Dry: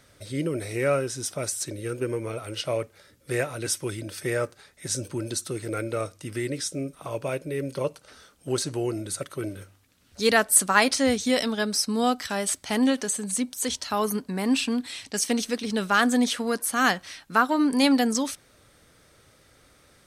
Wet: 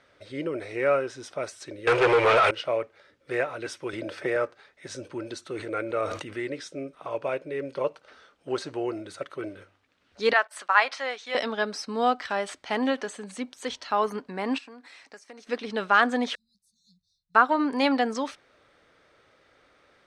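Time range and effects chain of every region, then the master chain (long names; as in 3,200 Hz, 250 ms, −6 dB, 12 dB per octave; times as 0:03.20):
0:01.87–0:02.51: drawn EQ curve 140 Hz 0 dB, 220 Hz −29 dB, 400 Hz +2 dB, 3,400 Hz +11 dB, 13,000 Hz −1 dB + leveller curve on the samples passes 5
0:03.93–0:04.36: parametric band 570 Hz +5.5 dB 0.6 octaves + multiband upward and downward compressor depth 70%
0:05.45–0:06.40: notch filter 5,100 Hz, Q 7.9 + level that may fall only so fast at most 24 dB per second
0:10.33–0:11.35: noise gate −36 dBFS, range −15 dB + high-pass filter 850 Hz + high-shelf EQ 6,500 Hz −10.5 dB
0:14.58–0:15.47: high-pass filter 570 Hz 6 dB per octave + parametric band 3,200 Hz −12 dB 0.7 octaves + downward compressor 4 to 1, threshold −40 dBFS
0:16.35–0:17.35: linear-phase brick-wall band-stop 200–3,500 Hz + guitar amp tone stack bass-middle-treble 10-0-1
whole clip: dynamic equaliser 950 Hz, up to +3 dB, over −35 dBFS, Q 0.8; low-pass filter 5,800 Hz 12 dB per octave; bass and treble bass −13 dB, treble −11 dB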